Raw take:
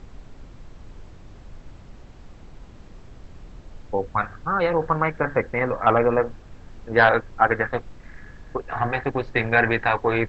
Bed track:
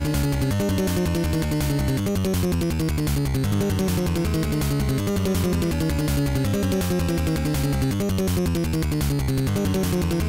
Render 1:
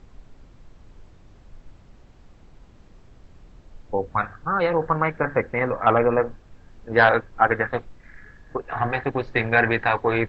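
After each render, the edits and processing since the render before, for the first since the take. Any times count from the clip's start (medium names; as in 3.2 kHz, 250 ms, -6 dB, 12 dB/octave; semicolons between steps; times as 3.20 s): noise print and reduce 6 dB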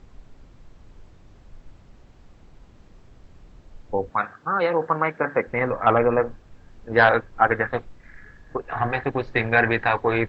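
4.10–5.47 s: high-pass 200 Hz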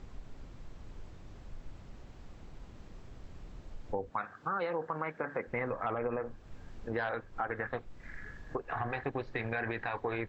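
peak limiter -12.5 dBFS, peak gain reduction 8.5 dB; compression 2.5:1, threshold -37 dBFS, peak gain reduction 13 dB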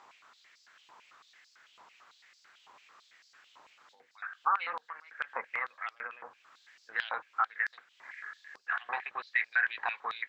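octave divider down 1 oct, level +4 dB; step-sequenced high-pass 9 Hz 970–4800 Hz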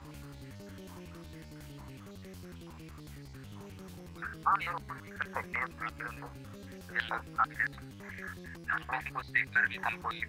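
add bed track -26 dB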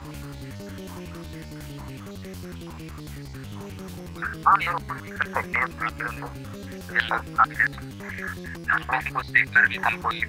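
trim +10.5 dB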